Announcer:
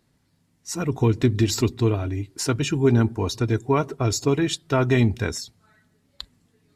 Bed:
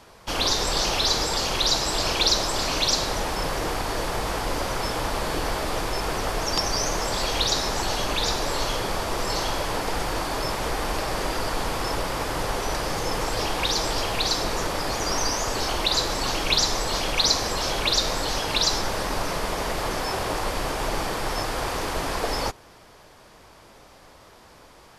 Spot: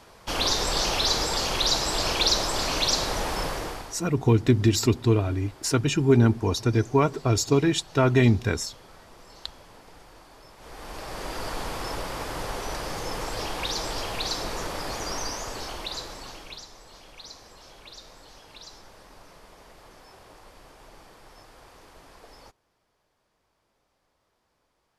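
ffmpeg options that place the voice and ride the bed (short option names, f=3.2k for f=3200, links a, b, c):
-filter_complex "[0:a]adelay=3250,volume=0dB[a];[1:a]volume=16.5dB,afade=t=out:st=3.39:d=0.6:silence=0.0794328,afade=t=in:st=10.56:d=0.92:silence=0.125893,afade=t=out:st=14.94:d=1.72:silence=0.125893[b];[a][b]amix=inputs=2:normalize=0"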